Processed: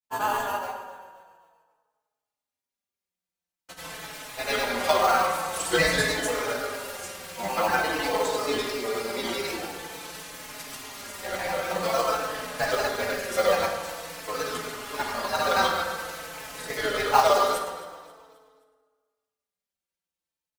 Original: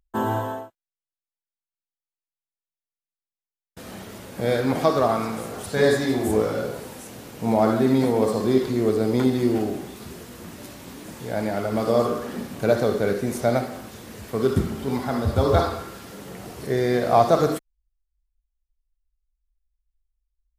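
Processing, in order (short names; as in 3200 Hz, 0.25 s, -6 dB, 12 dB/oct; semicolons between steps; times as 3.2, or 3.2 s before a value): HPF 1100 Hz 12 dB/oct; grains, pitch spread up and down by 3 st; in parallel at -9 dB: sample-rate reducer 1800 Hz, jitter 0%; on the sum: feedback echo 0.265 s, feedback 43%, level -18 dB; on a send at -2.5 dB: reverb RT60 1.6 s, pre-delay 3 ms; on the sum: endless flanger 4.2 ms -0.48 Hz; gain +8.5 dB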